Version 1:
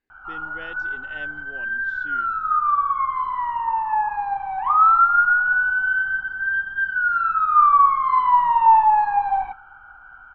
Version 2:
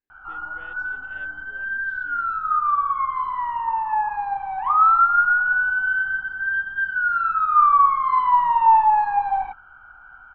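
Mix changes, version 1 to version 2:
speech -10.5 dB; reverb: off

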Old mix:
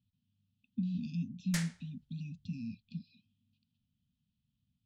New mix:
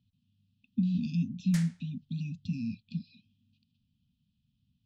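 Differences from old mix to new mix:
speech +6.5 dB; background -4.0 dB

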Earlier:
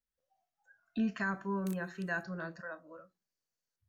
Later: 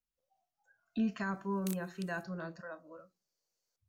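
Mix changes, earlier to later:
background +8.0 dB; master: add bell 1700 Hz -6.5 dB 0.53 oct

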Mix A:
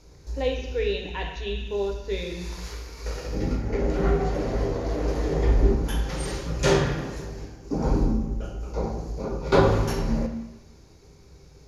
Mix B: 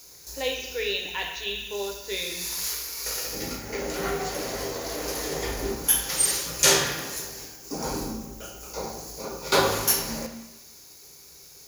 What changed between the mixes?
background: remove air absorption 54 m; master: add tilt +4 dB/oct

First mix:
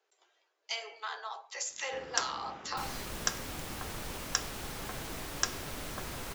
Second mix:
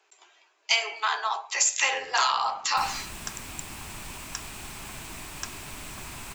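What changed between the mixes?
speech +11.5 dB; first sound -7.5 dB; master: add thirty-one-band EQ 500 Hz -11 dB, 1000 Hz +4 dB, 2500 Hz +7 dB, 8000 Hz +8 dB

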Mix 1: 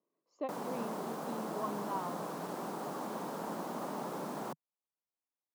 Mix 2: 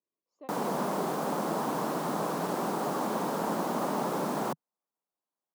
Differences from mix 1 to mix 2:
speech -11.0 dB; background +9.0 dB

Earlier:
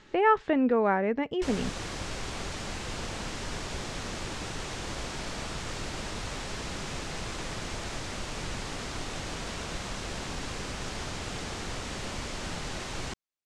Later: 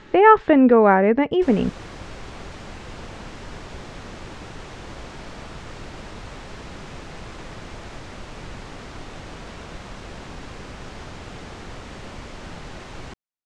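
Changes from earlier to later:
speech +11.0 dB; master: add high shelf 4000 Hz -11.5 dB

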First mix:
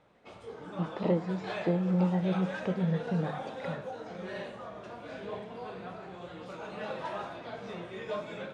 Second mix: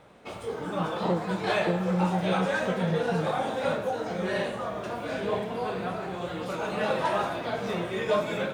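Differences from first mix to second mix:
background +10.5 dB; master: remove LPF 6700 Hz 12 dB/oct

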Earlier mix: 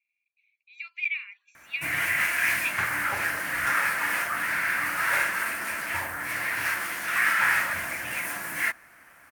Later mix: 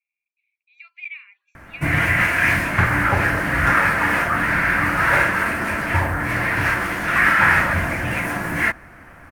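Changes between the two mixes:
background +10.5 dB; master: add tilt -4 dB/oct

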